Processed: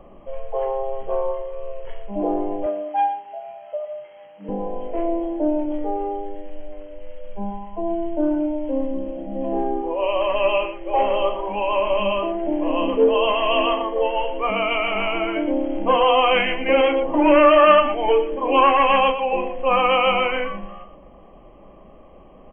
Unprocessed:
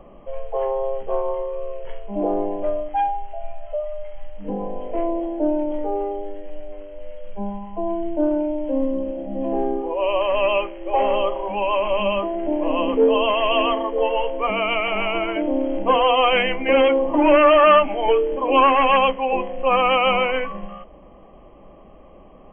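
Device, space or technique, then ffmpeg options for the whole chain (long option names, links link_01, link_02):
slapback doubling: -filter_complex "[0:a]asplit=3[link_01][link_02][link_03];[link_02]adelay=36,volume=-9dB[link_04];[link_03]adelay=117,volume=-10.5dB[link_05];[link_01][link_04][link_05]amix=inputs=3:normalize=0,asettb=1/sr,asplit=3[link_06][link_07][link_08];[link_06]atrim=end=2.664[link_09];[link_07]atrim=start=2.66:end=4.49,asetpts=PTS-STARTPTS,afade=type=in:duration=0.004:curve=qsin,afade=type=out:start_time=1.826:duration=0.004:curve=qsin,highpass=frequency=160:width=0.5412,highpass=frequency=160:width=1.3066[link_10];[link_08]atrim=start=4.486[link_11];[link_09][link_10]acrossfade=duration=0.004:curve1=hsin:curve2=qsin[link_12];[link_12][link_11]acrossfade=duration=0.004:curve1=qsin:curve2=hsin,volume=-1dB"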